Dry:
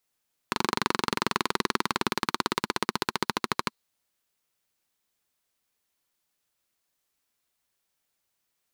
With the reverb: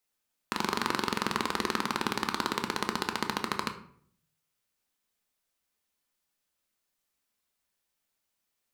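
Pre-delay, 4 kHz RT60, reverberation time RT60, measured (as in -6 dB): 3 ms, 0.40 s, 0.60 s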